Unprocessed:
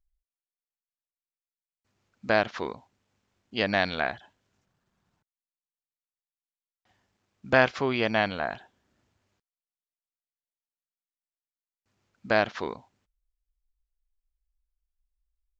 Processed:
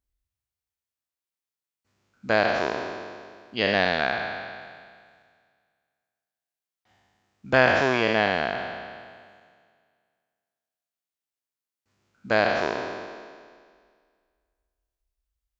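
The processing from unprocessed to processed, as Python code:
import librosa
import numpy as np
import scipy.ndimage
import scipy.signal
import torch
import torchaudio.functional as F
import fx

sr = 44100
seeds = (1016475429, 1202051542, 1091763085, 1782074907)

y = fx.spec_trails(x, sr, decay_s=1.95)
y = scipy.signal.sosfilt(scipy.signal.butter(2, 41.0, 'highpass', fs=sr, output='sos'), y)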